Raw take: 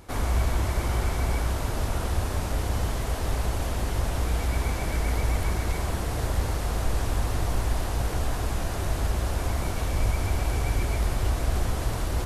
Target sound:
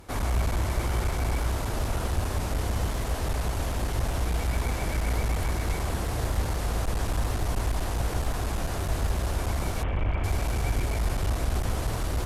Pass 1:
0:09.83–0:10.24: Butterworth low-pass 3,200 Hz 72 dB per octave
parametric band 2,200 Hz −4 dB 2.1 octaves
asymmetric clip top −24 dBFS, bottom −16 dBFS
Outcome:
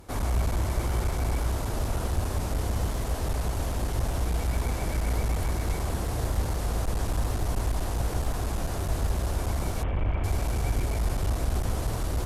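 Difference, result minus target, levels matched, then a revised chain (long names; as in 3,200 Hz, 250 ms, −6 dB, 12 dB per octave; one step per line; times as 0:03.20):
2,000 Hz band −3.0 dB
0:09.83–0:10.24: Butterworth low-pass 3,200 Hz 72 dB per octave
asymmetric clip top −24 dBFS, bottom −16 dBFS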